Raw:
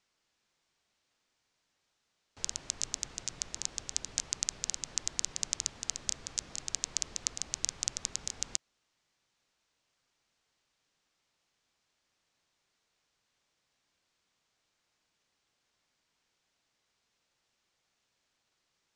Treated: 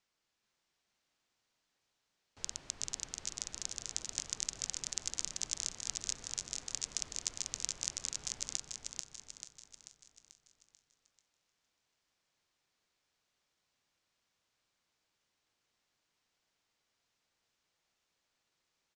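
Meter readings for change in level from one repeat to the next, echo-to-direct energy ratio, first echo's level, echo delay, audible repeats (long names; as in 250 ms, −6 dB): repeats not evenly spaced, −2.5 dB, −4.0 dB, 439 ms, 11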